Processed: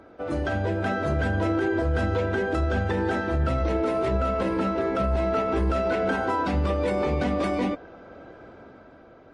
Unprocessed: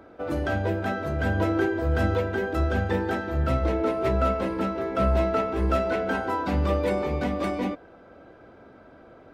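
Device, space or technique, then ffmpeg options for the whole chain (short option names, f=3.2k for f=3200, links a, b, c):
low-bitrate web radio: -filter_complex "[0:a]asettb=1/sr,asplit=3[a][b][c];[a]atrim=end=3.584[d];[b]atrim=start=3.58:end=4.06,asetpts=PTS-STARTPTS,afade=t=in:d=0.004:c=qsin,afade=t=out:st=0.476:d=0.004:c=qsin,highshelf=f=5.6k:g=5[e];[c]atrim=start=4.056[f];[d][e]acrossfade=d=0.004:c1=hsin:c2=qsin[g];[g][f]acrossfade=d=0.004:c1=qsin:c2=hsin,dynaudnorm=f=110:g=13:m=5dB,alimiter=limit=-16dB:level=0:latency=1:release=73" -ar 24000 -c:a libmp3lame -b:a 40k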